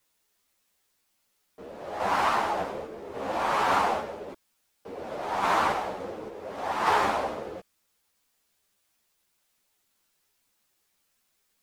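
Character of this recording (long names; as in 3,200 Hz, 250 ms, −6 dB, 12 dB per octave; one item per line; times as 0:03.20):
sample-and-hold tremolo
a quantiser's noise floor 12 bits, dither triangular
a shimmering, thickened sound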